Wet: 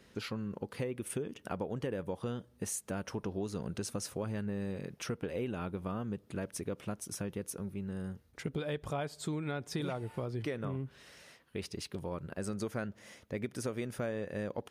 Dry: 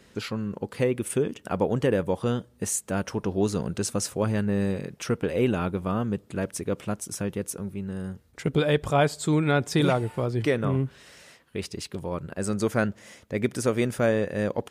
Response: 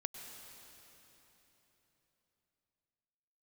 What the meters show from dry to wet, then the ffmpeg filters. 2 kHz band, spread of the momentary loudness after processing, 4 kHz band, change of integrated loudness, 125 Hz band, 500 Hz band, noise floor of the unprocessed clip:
-12.5 dB, 4 LU, -10.0 dB, -11.5 dB, -11.5 dB, -12.5 dB, -58 dBFS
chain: -af "equalizer=f=7.6k:t=o:w=0.24:g=-6,acompressor=threshold=-28dB:ratio=5,volume=-5.5dB"

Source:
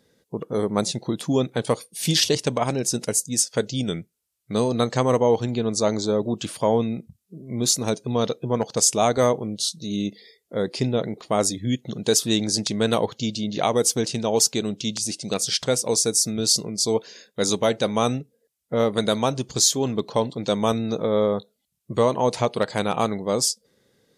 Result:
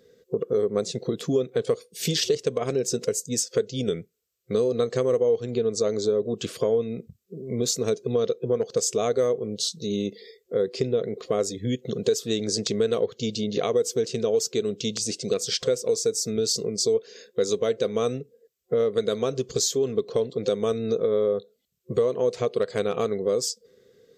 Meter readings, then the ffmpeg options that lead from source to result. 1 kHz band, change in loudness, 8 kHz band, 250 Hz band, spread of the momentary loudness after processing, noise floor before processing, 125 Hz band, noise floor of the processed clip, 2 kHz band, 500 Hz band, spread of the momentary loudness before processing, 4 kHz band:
-10.5 dB, -3.0 dB, -7.0 dB, -5.5 dB, 5 LU, -75 dBFS, -5.5 dB, -67 dBFS, -7.0 dB, +0.5 dB, 8 LU, -5.5 dB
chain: -af "superequalizer=7b=3.55:9b=0.355:16b=0.316,acompressor=threshold=-23dB:ratio=3"

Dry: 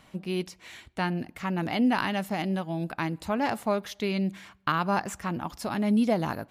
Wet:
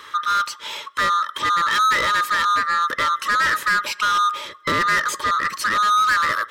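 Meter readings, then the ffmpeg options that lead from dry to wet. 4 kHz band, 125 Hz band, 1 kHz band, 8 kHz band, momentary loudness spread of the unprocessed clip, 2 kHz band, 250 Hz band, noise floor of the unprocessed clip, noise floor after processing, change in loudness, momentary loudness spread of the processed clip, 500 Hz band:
+14.0 dB, -8.5 dB, +13.5 dB, +14.5 dB, 9 LU, +15.5 dB, -12.0 dB, -60 dBFS, -42 dBFS, +10.0 dB, 6 LU, -3.0 dB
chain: -filter_complex "[0:a]afftfilt=real='real(if(lt(b,960),b+48*(1-2*mod(floor(b/48),2)),b),0)':imag='imag(if(lt(b,960),b+48*(1-2*mod(floor(b/48),2)),b),0)':win_size=2048:overlap=0.75,asplit=2[a][b];[b]highpass=f=720:p=1,volume=24dB,asoftclip=type=tanh:threshold=-11.5dB[c];[a][c]amix=inputs=2:normalize=0,lowpass=f=5k:p=1,volume=-6dB,asuperstop=centerf=740:order=12:qfactor=3.3"

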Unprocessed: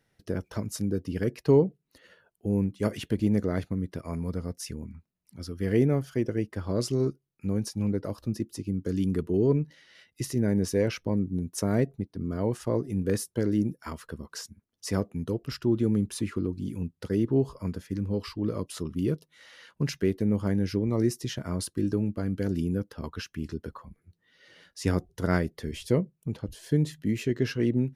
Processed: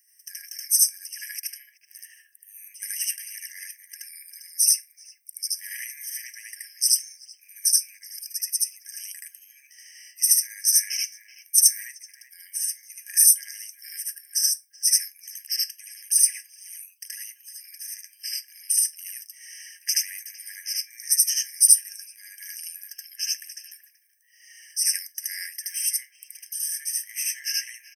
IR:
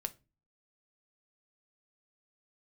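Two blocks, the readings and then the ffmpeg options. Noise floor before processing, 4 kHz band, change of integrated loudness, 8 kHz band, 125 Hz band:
-77 dBFS, +14.5 dB, +7.0 dB, +23.0 dB, under -40 dB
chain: -filter_complex "[0:a]highpass=730,highshelf=f=3.4k:g=-8,asplit=2[a][b];[b]adelay=380,highpass=300,lowpass=3.4k,asoftclip=type=hard:threshold=-26dB,volume=-15dB[c];[a][c]amix=inputs=2:normalize=0,asplit=2[d][e];[e]acompressor=threshold=-35dB:ratio=6,volume=-1.5dB[f];[d][f]amix=inputs=2:normalize=0,aexciter=amount=13.7:drive=8.6:freq=5.6k,asplit=2[g][h];[1:a]atrim=start_sample=2205,adelay=76[i];[h][i]afir=irnorm=-1:irlink=0,volume=3dB[j];[g][j]amix=inputs=2:normalize=0,afftfilt=real='re*eq(mod(floor(b*sr/1024/1600),2),1)':imag='im*eq(mod(floor(b*sr/1024/1600),2),1)':win_size=1024:overlap=0.75,volume=-2.5dB"

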